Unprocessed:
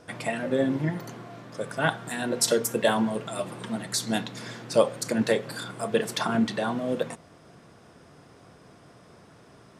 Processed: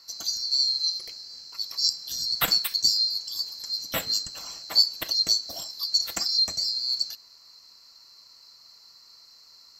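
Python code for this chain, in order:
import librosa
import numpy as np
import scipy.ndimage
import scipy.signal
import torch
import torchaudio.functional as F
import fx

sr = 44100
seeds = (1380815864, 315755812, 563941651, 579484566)

y = fx.band_swap(x, sr, width_hz=4000)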